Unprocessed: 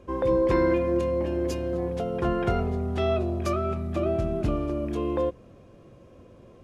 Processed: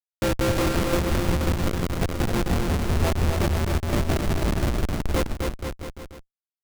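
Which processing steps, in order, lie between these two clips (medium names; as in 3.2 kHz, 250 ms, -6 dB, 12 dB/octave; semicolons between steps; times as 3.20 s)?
granulator 203 ms, grains 5.7 per s, spray 92 ms, pitch spread up and down by 0 st; Schmitt trigger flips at -24.5 dBFS; bouncing-ball echo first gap 260 ms, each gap 0.85×, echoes 5; trim +8.5 dB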